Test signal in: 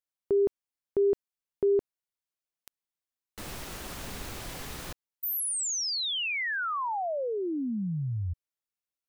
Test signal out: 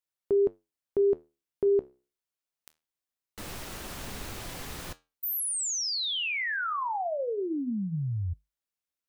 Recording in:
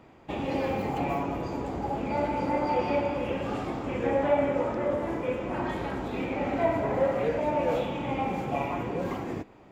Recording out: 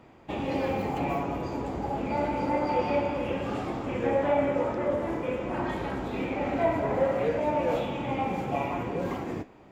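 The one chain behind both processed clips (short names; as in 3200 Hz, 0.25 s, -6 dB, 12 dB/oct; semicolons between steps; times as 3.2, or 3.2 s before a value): flange 0.25 Hz, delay 8.2 ms, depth 7.3 ms, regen -74%; gain +4.5 dB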